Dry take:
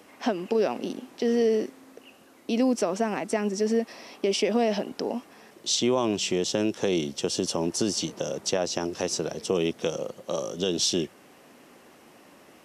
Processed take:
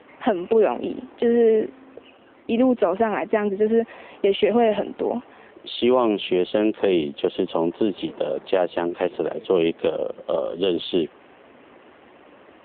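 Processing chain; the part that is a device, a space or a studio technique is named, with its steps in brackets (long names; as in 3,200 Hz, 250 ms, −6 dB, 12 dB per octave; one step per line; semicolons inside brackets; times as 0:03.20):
telephone (band-pass filter 260–3,200 Hz; level +7.5 dB; AMR narrowband 7.4 kbit/s 8,000 Hz)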